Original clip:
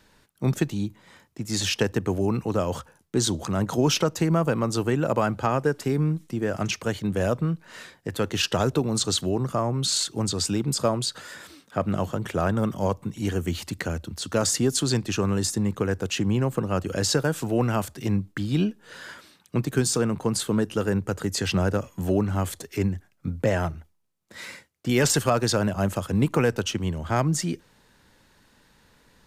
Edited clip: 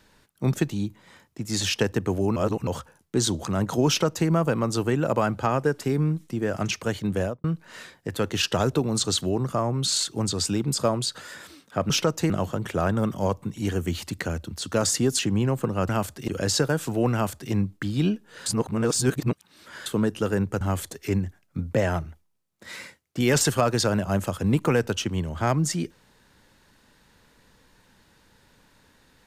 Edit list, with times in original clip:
0:02.36–0:02.67: reverse
0:03.88–0:04.28: duplicate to 0:11.90
0:07.16–0:07.44: fade out and dull
0:14.79–0:16.13: remove
0:17.68–0:18.07: duplicate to 0:16.83
0:19.01–0:20.41: reverse
0:21.16–0:22.30: remove

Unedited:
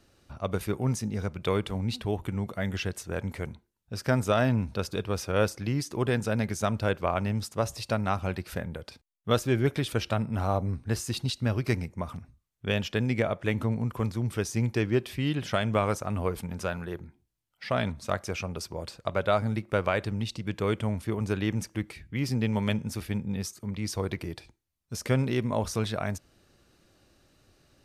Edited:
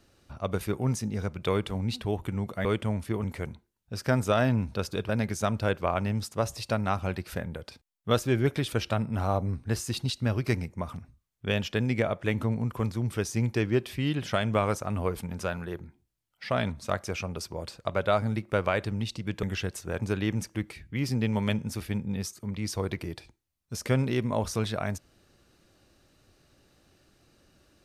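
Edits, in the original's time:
0:02.65–0:03.24: swap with 0:20.63–0:21.22
0:05.09–0:06.29: remove

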